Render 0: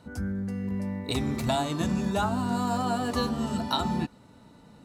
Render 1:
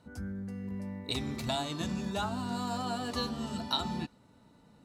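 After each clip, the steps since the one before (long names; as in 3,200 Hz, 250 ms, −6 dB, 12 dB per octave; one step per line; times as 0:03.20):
dynamic equaliser 4,000 Hz, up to +7 dB, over −49 dBFS, Q 0.82
level −7.5 dB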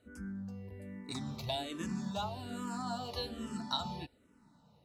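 frequency shifter mixed with the dry sound −1.2 Hz
level −2 dB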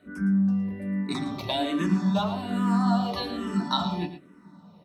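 single-tap delay 112 ms −11.5 dB
convolution reverb RT60 0.15 s, pre-delay 3 ms, DRR 3.5 dB
level +3 dB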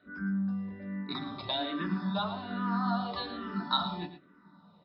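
Chebyshev low-pass with heavy ripple 5,200 Hz, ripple 9 dB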